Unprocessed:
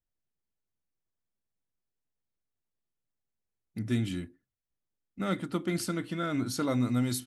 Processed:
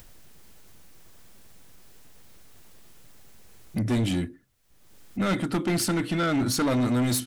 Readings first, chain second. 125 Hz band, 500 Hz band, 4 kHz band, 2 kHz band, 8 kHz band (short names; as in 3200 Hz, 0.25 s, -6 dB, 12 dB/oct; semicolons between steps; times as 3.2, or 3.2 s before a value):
+5.0 dB, +6.0 dB, +8.0 dB, +7.0 dB, +8.5 dB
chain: in parallel at +2 dB: upward compressor, threshold -31 dBFS; on the sum: soft clip -24.5 dBFS, distortion -9 dB; gain +4 dB